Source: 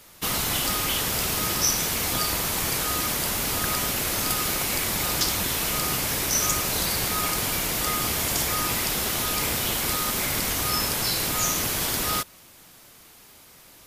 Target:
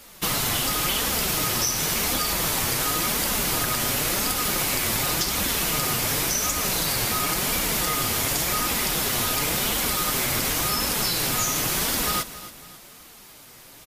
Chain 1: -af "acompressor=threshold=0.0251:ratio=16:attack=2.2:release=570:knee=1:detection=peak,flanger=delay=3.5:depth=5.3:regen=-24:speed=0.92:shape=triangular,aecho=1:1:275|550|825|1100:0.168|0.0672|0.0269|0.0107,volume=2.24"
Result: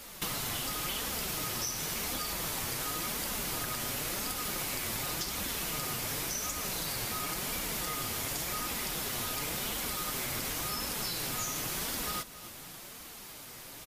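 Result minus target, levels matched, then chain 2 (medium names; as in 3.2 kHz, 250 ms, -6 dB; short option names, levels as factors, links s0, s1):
compression: peak gain reduction +11 dB
-af "acompressor=threshold=0.0944:ratio=16:attack=2.2:release=570:knee=1:detection=peak,flanger=delay=3.5:depth=5.3:regen=-24:speed=0.92:shape=triangular,aecho=1:1:275|550|825|1100:0.168|0.0672|0.0269|0.0107,volume=2.24"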